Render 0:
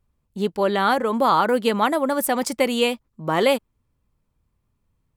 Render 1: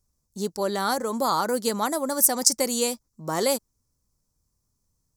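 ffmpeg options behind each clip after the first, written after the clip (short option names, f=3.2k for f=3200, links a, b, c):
-af "highshelf=f=4.1k:t=q:w=3:g=12.5,volume=-5.5dB"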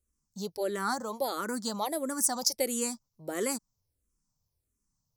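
-filter_complex "[0:a]asplit=2[a][b];[b]afreqshift=-1.5[c];[a][c]amix=inputs=2:normalize=1,volume=-3.5dB"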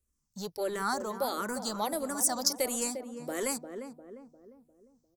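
-filter_complex "[0:a]asplit=2[a][b];[b]adelay=351,lowpass=f=1k:p=1,volume=-8dB,asplit=2[c][d];[d]adelay=351,lowpass=f=1k:p=1,volume=0.48,asplit=2[e][f];[f]adelay=351,lowpass=f=1k:p=1,volume=0.48,asplit=2[g][h];[h]adelay=351,lowpass=f=1k:p=1,volume=0.48,asplit=2[i][j];[j]adelay=351,lowpass=f=1k:p=1,volume=0.48,asplit=2[k][l];[l]adelay=351,lowpass=f=1k:p=1,volume=0.48[m];[a][c][e][g][i][k][m]amix=inputs=7:normalize=0,acrossover=split=420|7300[n][o][p];[n]asoftclip=type=hard:threshold=-38.5dB[q];[q][o][p]amix=inputs=3:normalize=0"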